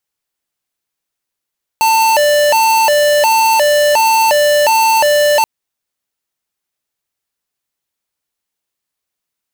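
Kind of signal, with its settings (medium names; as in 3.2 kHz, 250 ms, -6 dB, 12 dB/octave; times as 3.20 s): siren hi-lo 590–893 Hz 1.4 per s square -10.5 dBFS 3.63 s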